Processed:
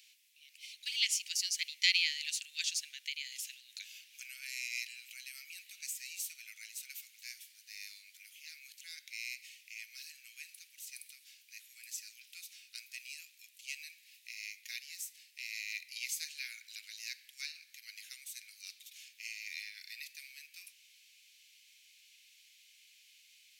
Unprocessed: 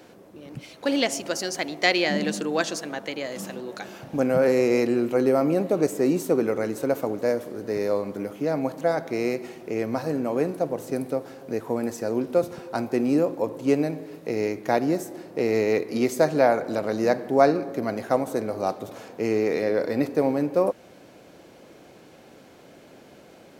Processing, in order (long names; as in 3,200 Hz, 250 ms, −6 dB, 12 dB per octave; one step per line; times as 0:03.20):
Butterworth high-pass 2,300 Hz 48 dB per octave
level −1.5 dB